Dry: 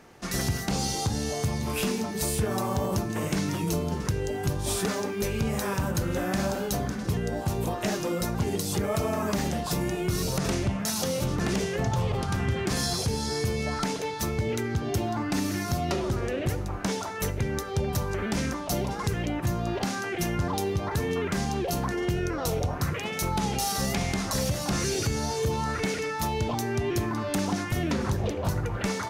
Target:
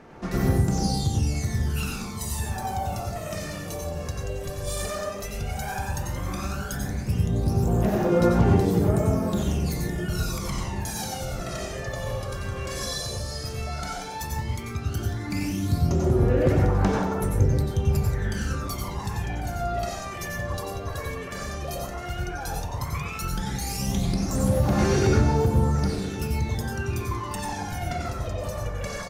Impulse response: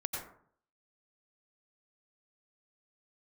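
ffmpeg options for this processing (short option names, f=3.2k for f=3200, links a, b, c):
-filter_complex "[0:a]aphaser=in_gain=1:out_gain=1:delay=1.8:decay=0.79:speed=0.12:type=sinusoidal,aecho=1:1:1097|2194|3291|4388:0.158|0.0792|0.0396|0.0198[a];[1:a]atrim=start_sample=2205[b];[a][b]afir=irnorm=-1:irlink=0,volume=-7.5dB"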